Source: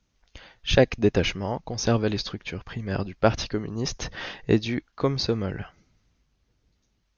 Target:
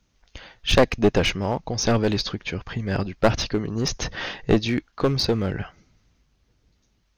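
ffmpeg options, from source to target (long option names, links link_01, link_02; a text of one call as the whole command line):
ffmpeg -i in.wav -af "aeval=exprs='clip(val(0),-1,0.0841)':channel_layout=same,volume=4.5dB" out.wav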